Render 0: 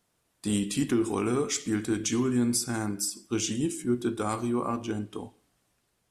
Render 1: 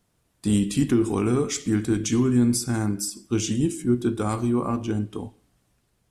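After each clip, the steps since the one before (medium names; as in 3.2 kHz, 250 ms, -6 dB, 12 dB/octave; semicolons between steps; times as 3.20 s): bass shelf 230 Hz +10.5 dB; trim +1 dB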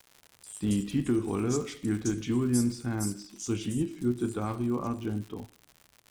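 bands offset in time highs, lows 170 ms, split 4.7 kHz; crackle 120 per s -32 dBFS; trim -6.5 dB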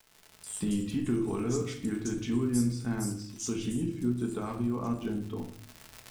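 recorder AGC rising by 17 dB/s; reverberation RT60 0.50 s, pre-delay 5 ms, DRR 3 dB; trim -4.5 dB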